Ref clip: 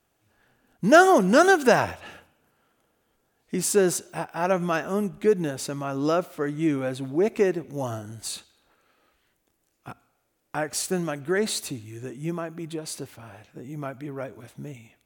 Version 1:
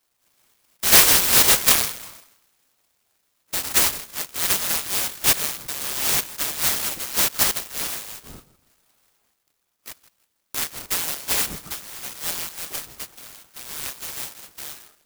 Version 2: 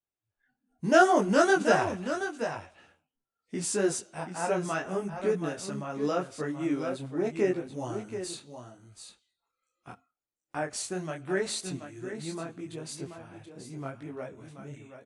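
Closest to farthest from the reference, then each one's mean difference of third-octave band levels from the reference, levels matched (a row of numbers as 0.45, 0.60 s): 2, 1; 4.5, 14.5 dB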